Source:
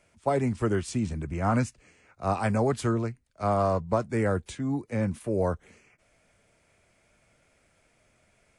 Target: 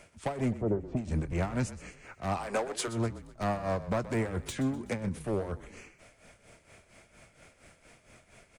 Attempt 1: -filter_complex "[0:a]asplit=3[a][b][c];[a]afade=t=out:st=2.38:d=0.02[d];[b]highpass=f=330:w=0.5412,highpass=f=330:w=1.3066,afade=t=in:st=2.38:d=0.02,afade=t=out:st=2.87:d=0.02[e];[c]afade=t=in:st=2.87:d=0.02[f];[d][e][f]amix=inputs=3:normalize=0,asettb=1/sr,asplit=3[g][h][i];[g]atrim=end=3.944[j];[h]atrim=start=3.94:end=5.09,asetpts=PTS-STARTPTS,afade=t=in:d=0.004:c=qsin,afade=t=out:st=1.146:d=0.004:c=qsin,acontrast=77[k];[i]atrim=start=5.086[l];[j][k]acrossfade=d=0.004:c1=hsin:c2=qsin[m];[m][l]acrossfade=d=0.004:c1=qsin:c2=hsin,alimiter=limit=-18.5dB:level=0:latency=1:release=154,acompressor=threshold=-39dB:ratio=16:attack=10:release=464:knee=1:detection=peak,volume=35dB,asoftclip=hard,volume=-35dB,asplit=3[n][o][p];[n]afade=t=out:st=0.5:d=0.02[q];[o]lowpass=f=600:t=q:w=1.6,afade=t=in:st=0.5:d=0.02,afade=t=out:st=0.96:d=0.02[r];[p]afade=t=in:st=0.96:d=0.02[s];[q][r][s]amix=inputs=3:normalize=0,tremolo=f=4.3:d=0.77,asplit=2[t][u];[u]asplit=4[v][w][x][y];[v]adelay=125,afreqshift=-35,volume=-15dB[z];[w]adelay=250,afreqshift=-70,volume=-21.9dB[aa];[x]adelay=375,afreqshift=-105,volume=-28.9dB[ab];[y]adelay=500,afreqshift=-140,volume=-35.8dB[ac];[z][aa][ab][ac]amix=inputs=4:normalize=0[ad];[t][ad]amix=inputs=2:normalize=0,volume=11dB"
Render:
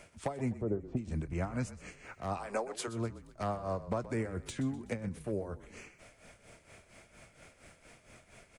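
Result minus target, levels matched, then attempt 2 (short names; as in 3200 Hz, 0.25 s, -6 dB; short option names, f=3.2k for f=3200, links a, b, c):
compressor: peak gain reduction +6 dB
-filter_complex "[0:a]asplit=3[a][b][c];[a]afade=t=out:st=2.38:d=0.02[d];[b]highpass=f=330:w=0.5412,highpass=f=330:w=1.3066,afade=t=in:st=2.38:d=0.02,afade=t=out:st=2.87:d=0.02[e];[c]afade=t=in:st=2.87:d=0.02[f];[d][e][f]amix=inputs=3:normalize=0,asettb=1/sr,asplit=3[g][h][i];[g]atrim=end=3.944[j];[h]atrim=start=3.94:end=5.09,asetpts=PTS-STARTPTS,afade=t=in:d=0.004:c=qsin,afade=t=out:st=1.146:d=0.004:c=qsin,acontrast=77[k];[i]atrim=start=5.086[l];[j][k]acrossfade=d=0.004:c1=hsin:c2=qsin[m];[m][l]acrossfade=d=0.004:c1=qsin:c2=hsin,alimiter=limit=-18.5dB:level=0:latency=1:release=154,acompressor=threshold=-32.5dB:ratio=16:attack=10:release=464:knee=1:detection=peak,volume=35dB,asoftclip=hard,volume=-35dB,asplit=3[n][o][p];[n]afade=t=out:st=0.5:d=0.02[q];[o]lowpass=f=600:t=q:w=1.6,afade=t=in:st=0.5:d=0.02,afade=t=out:st=0.96:d=0.02[r];[p]afade=t=in:st=0.96:d=0.02[s];[q][r][s]amix=inputs=3:normalize=0,tremolo=f=4.3:d=0.77,asplit=2[t][u];[u]asplit=4[v][w][x][y];[v]adelay=125,afreqshift=-35,volume=-15dB[z];[w]adelay=250,afreqshift=-70,volume=-21.9dB[aa];[x]adelay=375,afreqshift=-105,volume=-28.9dB[ab];[y]adelay=500,afreqshift=-140,volume=-35.8dB[ac];[z][aa][ab][ac]amix=inputs=4:normalize=0[ad];[t][ad]amix=inputs=2:normalize=0,volume=11dB"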